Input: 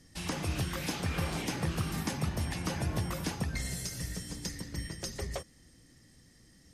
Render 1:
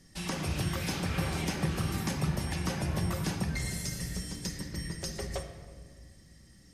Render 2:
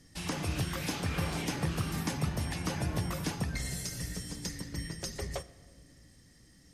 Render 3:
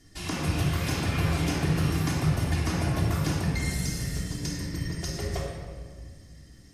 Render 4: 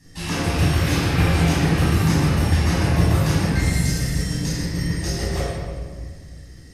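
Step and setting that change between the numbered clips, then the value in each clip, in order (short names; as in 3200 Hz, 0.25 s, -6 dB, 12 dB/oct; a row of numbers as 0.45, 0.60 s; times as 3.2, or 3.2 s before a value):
shoebox room, microphone at: 1.1, 0.34, 3.2, 9.5 m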